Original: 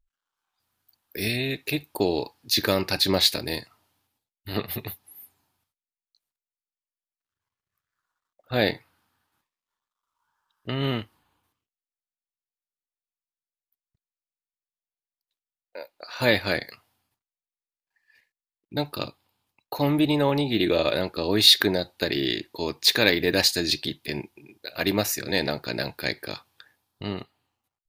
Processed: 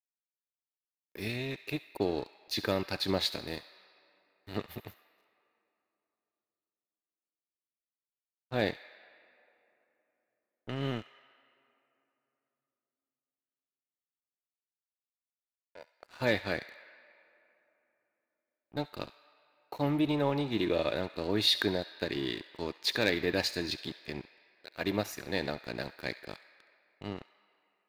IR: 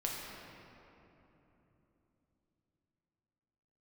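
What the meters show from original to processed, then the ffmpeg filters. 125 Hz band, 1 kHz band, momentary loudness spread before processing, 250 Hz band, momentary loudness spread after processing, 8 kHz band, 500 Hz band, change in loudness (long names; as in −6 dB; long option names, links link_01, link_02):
−7.5 dB, −7.0 dB, 18 LU, −7.5 dB, 16 LU, −14.5 dB, −7.5 dB, −9.0 dB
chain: -filter_complex "[0:a]aeval=exprs='sgn(val(0))*max(abs(val(0))-0.0119,0)':channel_layout=same,highshelf=frequency=4400:gain=-11,asplit=2[link_01][link_02];[link_02]highpass=1200[link_03];[1:a]atrim=start_sample=2205,adelay=68[link_04];[link_03][link_04]afir=irnorm=-1:irlink=0,volume=-14dB[link_05];[link_01][link_05]amix=inputs=2:normalize=0,asoftclip=type=hard:threshold=-8.5dB,volume=-6dB"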